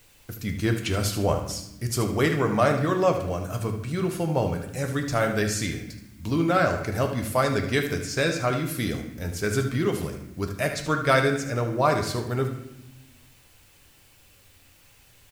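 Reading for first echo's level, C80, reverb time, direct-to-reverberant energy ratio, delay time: −11.0 dB, 10.5 dB, 0.90 s, 3.5 dB, 76 ms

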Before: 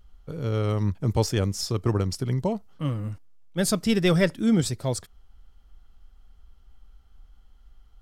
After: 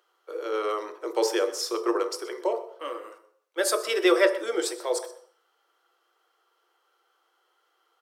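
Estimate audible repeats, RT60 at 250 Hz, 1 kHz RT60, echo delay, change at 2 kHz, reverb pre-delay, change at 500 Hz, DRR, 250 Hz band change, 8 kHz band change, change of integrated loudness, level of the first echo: 1, 0.50 s, 0.60 s, 124 ms, +3.5 dB, 3 ms, +3.5 dB, 5.0 dB, −7.0 dB, 0.0 dB, −1.5 dB, −17.0 dB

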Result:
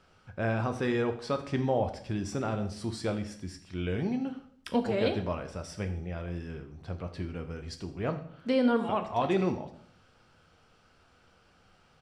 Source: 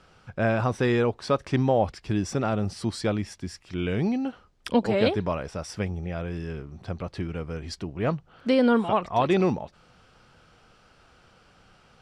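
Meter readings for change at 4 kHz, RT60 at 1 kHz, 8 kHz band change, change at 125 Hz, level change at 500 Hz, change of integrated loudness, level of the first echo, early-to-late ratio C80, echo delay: −5.5 dB, 0.55 s, −5.5 dB, −5.5 dB, −5.5 dB, −5.5 dB, −17.5 dB, 13.5 dB, 81 ms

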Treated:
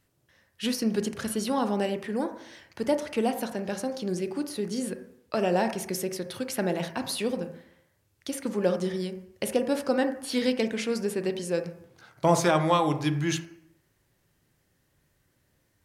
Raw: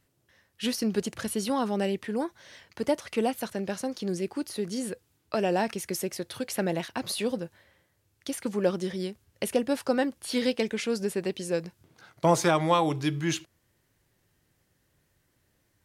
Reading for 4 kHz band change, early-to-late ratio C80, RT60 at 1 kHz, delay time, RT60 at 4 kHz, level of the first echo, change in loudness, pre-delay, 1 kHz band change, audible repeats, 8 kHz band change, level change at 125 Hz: 0.0 dB, 13.5 dB, 0.65 s, no echo audible, 0.60 s, no echo audible, +1.0 dB, 25 ms, +0.5 dB, no echo audible, 0.0 dB, +1.5 dB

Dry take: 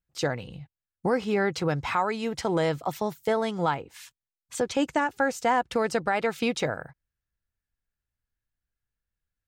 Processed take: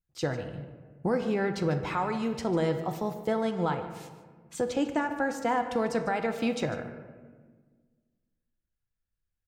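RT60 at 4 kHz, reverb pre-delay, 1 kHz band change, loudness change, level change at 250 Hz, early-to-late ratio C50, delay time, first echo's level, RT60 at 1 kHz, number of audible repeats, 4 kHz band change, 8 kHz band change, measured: 0.75 s, 3 ms, −4.0 dB, −2.5 dB, 0.0 dB, 8.0 dB, 148 ms, −15.0 dB, 1.4 s, 1, −6.0 dB, −6.0 dB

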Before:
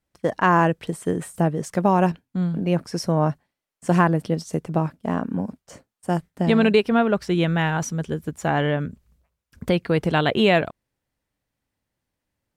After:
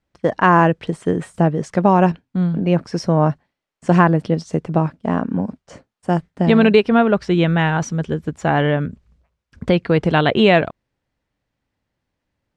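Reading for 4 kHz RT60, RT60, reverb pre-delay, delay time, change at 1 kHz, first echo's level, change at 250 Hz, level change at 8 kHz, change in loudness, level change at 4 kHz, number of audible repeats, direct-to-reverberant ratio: no reverb audible, no reverb audible, no reverb audible, no echo audible, +4.5 dB, no echo audible, +5.0 dB, −2.0 dB, +4.5 dB, +3.0 dB, no echo audible, no reverb audible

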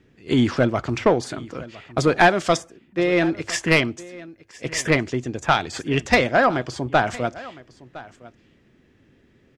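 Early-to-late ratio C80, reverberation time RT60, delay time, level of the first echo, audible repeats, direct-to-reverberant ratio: no reverb audible, no reverb audible, 1,010 ms, −19.5 dB, 1, no reverb audible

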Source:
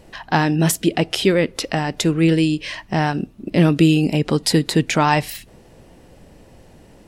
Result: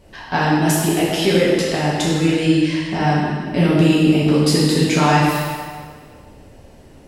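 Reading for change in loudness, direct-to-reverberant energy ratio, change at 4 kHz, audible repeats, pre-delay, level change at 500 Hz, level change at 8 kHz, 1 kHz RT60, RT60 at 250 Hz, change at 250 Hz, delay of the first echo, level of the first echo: +1.5 dB, −7.5 dB, +1.5 dB, no echo audible, 3 ms, +2.5 dB, +1.0 dB, 1.8 s, 1.6 s, +2.0 dB, no echo audible, no echo audible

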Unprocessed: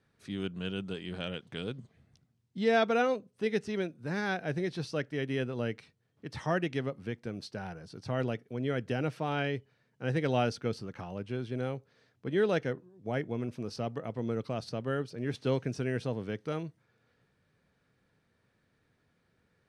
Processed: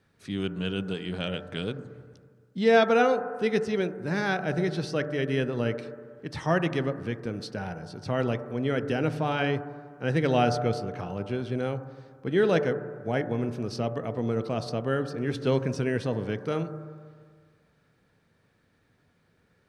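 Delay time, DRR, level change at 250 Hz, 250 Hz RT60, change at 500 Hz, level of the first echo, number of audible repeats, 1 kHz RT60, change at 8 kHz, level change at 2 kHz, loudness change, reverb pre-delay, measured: no echo audible, 9.5 dB, +5.5 dB, 1.8 s, +6.0 dB, no echo audible, no echo audible, 1.8 s, +5.0 dB, +5.5 dB, +5.5 dB, 7 ms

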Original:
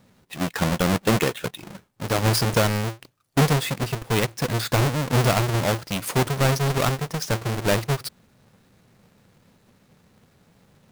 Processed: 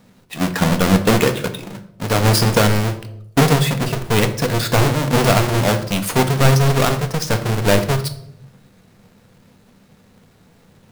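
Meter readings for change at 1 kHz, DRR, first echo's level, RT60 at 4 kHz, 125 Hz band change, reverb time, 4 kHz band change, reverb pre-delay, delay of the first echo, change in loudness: +6.0 dB, 7.5 dB, no echo audible, 0.50 s, +6.0 dB, 0.75 s, +5.5 dB, 4 ms, no echo audible, +6.0 dB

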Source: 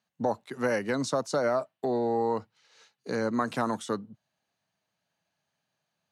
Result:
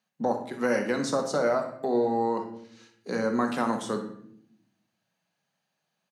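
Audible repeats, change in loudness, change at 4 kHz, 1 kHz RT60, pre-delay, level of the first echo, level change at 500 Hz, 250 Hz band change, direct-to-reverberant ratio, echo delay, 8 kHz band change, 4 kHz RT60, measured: 1, +2.0 dB, +1.0 dB, 0.55 s, 4 ms, −12.0 dB, +1.5 dB, +2.5 dB, 3.5 dB, 61 ms, +1.0 dB, 0.45 s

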